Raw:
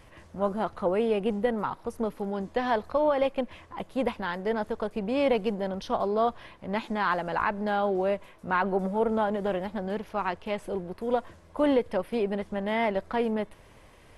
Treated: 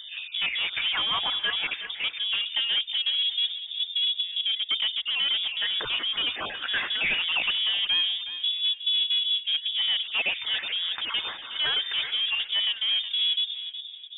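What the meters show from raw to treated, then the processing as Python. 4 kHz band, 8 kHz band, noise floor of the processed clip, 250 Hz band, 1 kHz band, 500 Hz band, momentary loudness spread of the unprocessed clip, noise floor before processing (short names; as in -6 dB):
+24.5 dB, n/a, -41 dBFS, -23.5 dB, -10.5 dB, -22.0 dB, 8 LU, -54 dBFS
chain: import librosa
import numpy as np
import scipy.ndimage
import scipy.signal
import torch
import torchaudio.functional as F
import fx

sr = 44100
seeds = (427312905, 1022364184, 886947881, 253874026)

p1 = fx.spec_dropout(x, sr, seeds[0], share_pct=24)
p2 = fx.high_shelf(p1, sr, hz=2300.0, db=9.0)
p3 = fx.over_compress(p2, sr, threshold_db=-38.0, ratio=-1.0)
p4 = p2 + F.gain(torch.from_numpy(p3), -3.0).numpy()
p5 = fx.filter_lfo_lowpass(p4, sr, shape='sine', hz=0.2, low_hz=210.0, high_hz=2500.0, q=4.7)
p6 = 10.0 ** (-23.5 / 20.0) * np.tanh(p5 / 10.0 ** (-23.5 / 20.0))
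p7 = p6 + fx.echo_feedback(p6, sr, ms=366, feedback_pct=30, wet_db=-11.5, dry=0)
p8 = fx.freq_invert(p7, sr, carrier_hz=3600)
p9 = fx.hum_notches(p8, sr, base_hz=50, count=2)
y = F.gain(torch.from_numpy(p9), 1.0).numpy()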